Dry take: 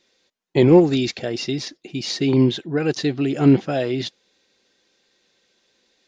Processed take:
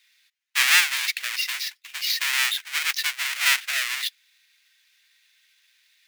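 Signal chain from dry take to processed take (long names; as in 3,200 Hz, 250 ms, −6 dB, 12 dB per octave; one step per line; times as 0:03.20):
each half-wave held at its own peak
four-pole ladder high-pass 1,700 Hz, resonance 40%
level +6.5 dB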